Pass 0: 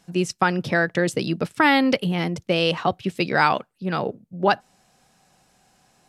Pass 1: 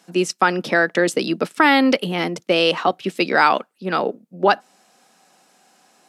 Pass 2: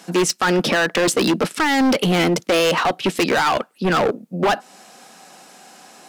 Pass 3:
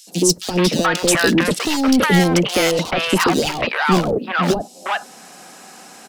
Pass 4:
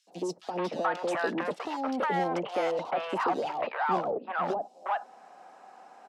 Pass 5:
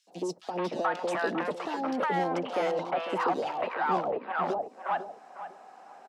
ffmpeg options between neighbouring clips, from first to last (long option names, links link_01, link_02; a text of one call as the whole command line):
ffmpeg -i in.wav -filter_complex "[0:a]highpass=frequency=220:width=0.5412,highpass=frequency=220:width=1.3066,asplit=2[link_01][link_02];[link_02]alimiter=limit=-11.5dB:level=0:latency=1:release=60,volume=-3dB[link_03];[link_01][link_03]amix=inputs=2:normalize=0,equalizer=frequency=1300:width=6.7:gain=2.5" out.wav
ffmpeg -i in.wav -filter_complex "[0:a]asplit=2[link_01][link_02];[link_02]acompressor=threshold=-24dB:ratio=6,volume=2dB[link_03];[link_01][link_03]amix=inputs=2:normalize=0,alimiter=limit=-6.5dB:level=0:latency=1:release=15,asoftclip=type=hard:threshold=-18.5dB,volume=4.5dB" out.wav
ffmpeg -i in.wav -filter_complex "[0:a]acrossover=split=190|3000[link_01][link_02][link_03];[link_02]acompressor=threshold=-19dB:ratio=6[link_04];[link_01][link_04][link_03]amix=inputs=3:normalize=0,acrossover=split=700|3400[link_05][link_06][link_07];[link_05]adelay=70[link_08];[link_06]adelay=430[link_09];[link_08][link_09][link_07]amix=inputs=3:normalize=0,volume=5.5dB" out.wav
ffmpeg -i in.wav -af "bandpass=frequency=780:width_type=q:width=1.8:csg=0,volume=-5dB" out.wav
ffmpeg -i in.wav -filter_complex "[0:a]asplit=2[link_01][link_02];[link_02]adelay=501,lowpass=frequency=2600:poles=1,volume=-11dB,asplit=2[link_03][link_04];[link_04]adelay=501,lowpass=frequency=2600:poles=1,volume=0.22,asplit=2[link_05][link_06];[link_06]adelay=501,lowpass=frequency=2600:poles=1,volume=0.22[link_07];[link_01][link_03][link_05][link_07]amix=inputs=4:normalize=0" out.wav